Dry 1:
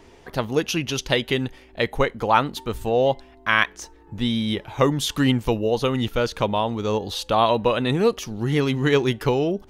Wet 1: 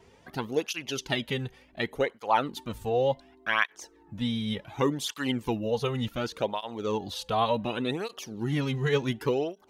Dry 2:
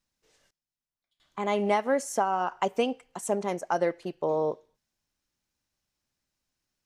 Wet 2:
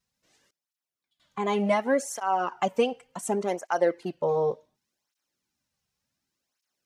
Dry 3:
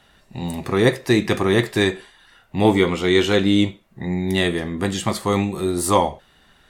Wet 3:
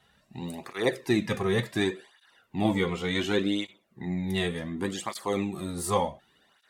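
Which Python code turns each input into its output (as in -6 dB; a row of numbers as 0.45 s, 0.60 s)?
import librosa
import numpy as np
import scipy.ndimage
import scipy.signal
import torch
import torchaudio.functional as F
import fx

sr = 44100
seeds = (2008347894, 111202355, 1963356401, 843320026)

y = fx.flanger_cancel(x, sr, hz=0.68, depth_ms=3.6)
y = y * 10.0 ** (-30 / 20.0) / np.sqrt(np.mean(np.square(y)))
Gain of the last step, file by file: -4.0 dB, +4.0 dB, -6.0 dB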